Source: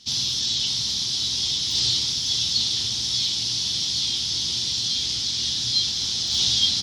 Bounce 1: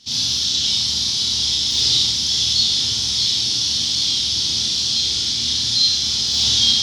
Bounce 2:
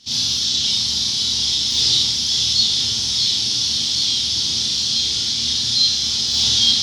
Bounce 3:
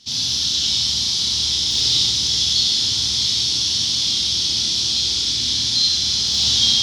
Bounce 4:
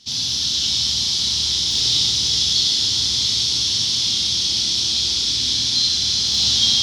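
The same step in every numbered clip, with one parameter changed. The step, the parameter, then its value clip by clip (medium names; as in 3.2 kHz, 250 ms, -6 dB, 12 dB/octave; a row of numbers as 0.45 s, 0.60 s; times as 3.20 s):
Schroeder reverb, RT60: 0.71 s, 0.34 s, 2.2 s, 4.6 s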